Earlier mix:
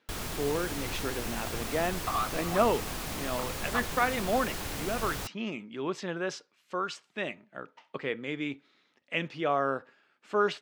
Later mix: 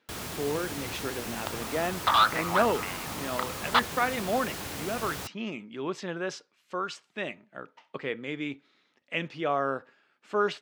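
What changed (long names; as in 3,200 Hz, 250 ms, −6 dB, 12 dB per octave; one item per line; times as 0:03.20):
first sound: add high-pass filter 82 Hz
second sound: remove formant filter a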